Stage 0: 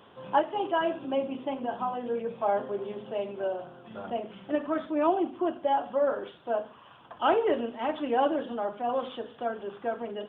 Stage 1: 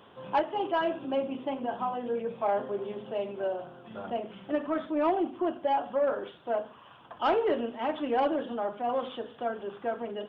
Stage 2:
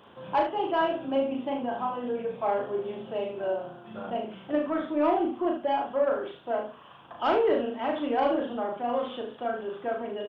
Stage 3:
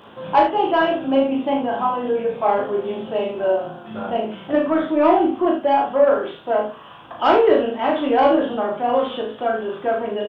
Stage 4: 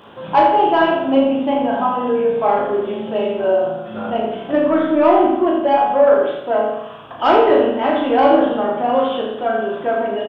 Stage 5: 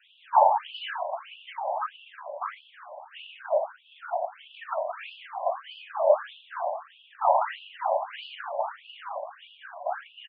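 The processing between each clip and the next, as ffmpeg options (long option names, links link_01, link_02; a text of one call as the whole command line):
ffmpeg -i in.wav -af "asoftclip=type=tanh:threshold=-17.5dB" out.wav
ffmpeg -i in.wav -af "aecho=1:1:37|74:0.631|0.398" out.wav
ffmpeg -i in.wav -filter_complex "[0:a]asplit=2[link_01][link_02];[link_02]adelay=19,volume=-6.5dB[link_03];[link_01][link_03]amix=inputs=2:normalize=0,volume=8.5dB" out.wav
ffmpeg -i in.wav -filter_complex "[0:a]asplit=2[link_01][link_02];[link_02]adelay=86,lowpass=frequency=3400:poles=1,volume=-5dB,asplit=2[link_03][link_04];[link_04]adelay=86,lowpass=frequency=3400:poles=1,volume=0.5,asplit=2[link_05][link_06];[link_06]adelay=86,lowpass=frequency=3400:poles=1,volume=0.5,asplit=2[link_07][link_08];[link_08]adelay=86,lowpass=frequency=3400:poles=1,volume=0.5,asplit=2[link_09][link_10];[link_10]adelay=86,lowpass=frequency=3400:poles=1,volume=0.5,asplit=2[link_11][link_12];[link_12]adelay=86,lowpass=frequency=3400:poles=1,volume=0.5[link_13];[link_01][link_03][link_05][link_07][link_09][link_11][link_13]amix=inputs=7:normalize=0,volume=1.5dB" out.wav
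ffmpeg -i in.wav -af "afftfilt=real='hypot(re,im)*cos(2*PI*random(0))':imag='hypot(re,im)*sin(2*PI*random(1))':win_size=512:overlap=0.75,afftfilt=real='re*between(b*sr/1024,730*pow(3700/730,0.5+0.5*sin(2*PI*1.6*pts/sr))/1.41,730*pow(3700/730,0.5+0.5*sin(2*PI*1.6*pts/sr))*1.41)':imag='im*between(b*sr/1024,730*pow(3700/730,0.5+0.5*sin(2*PI*1.6*pts/sr))/1.41,730*pow(3700/730,0.5+0.5*sin(2*PI*1.6*pts/sr))*1.41)':win_size=1024:overlap=0.75" out.wav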